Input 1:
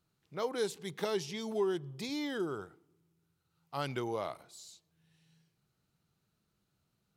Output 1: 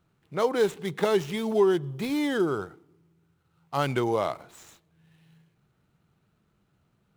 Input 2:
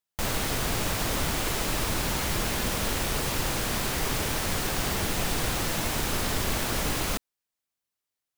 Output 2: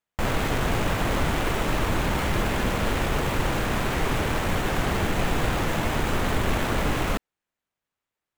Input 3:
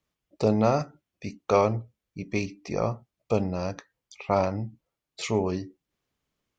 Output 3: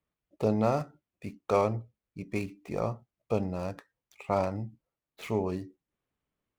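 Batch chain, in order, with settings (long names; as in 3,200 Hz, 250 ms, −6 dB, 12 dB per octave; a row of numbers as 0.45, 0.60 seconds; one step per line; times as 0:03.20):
running median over 9 samples
normalise the peak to −12 dBFS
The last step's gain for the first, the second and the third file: +10.5, +5.5, −4.0 decibels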